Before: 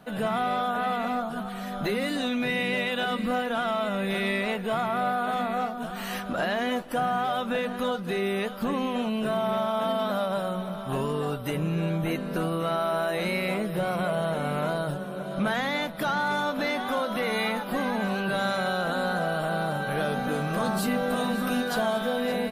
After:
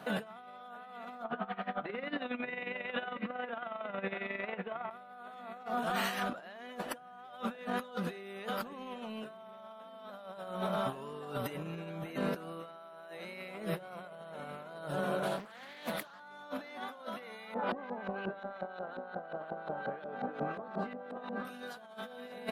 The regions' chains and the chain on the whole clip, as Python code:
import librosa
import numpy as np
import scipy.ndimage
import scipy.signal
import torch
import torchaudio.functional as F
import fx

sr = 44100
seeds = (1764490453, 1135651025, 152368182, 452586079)

y = fx.chain(x, sr, fx.lowpass(hz=2800.0, slope=24),
    fx.low_shelf(hz=140.0, db=-7.5),
    fx.tremolo_db(hz=11.0, depth_db=21), at=(1.24, 4.91))
y = fx.chain(y, sr, fx.high_shelf(hz=4200.0, db=11.0),
    fx.doppler_dist(depth_ms=0.6), at=(15.23, 16.2))
y = fx.chain(y, sr, fx.highpass(hz=220.0, slope=12),
    fx.filter_lfo_lowpass(shape='saw_up', hz=5.6, low_hz=430.0, high_hz=4300.0, q=0.74), at=(17.54, 21.45))
y = fx.highpass(y, sr, hz=850.0, slope=6)
y = fx.tilt_eq(y, sr, slope=-2.0)
y = fx.over_compress(y, sr, threshold_db=-39.0, ratio=-0.5)